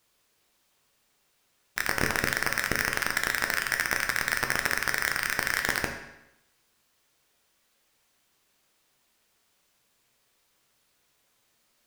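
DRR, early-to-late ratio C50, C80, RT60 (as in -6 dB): 3.5 dB, 7.5 dB, 9.5 dB, 0.85 s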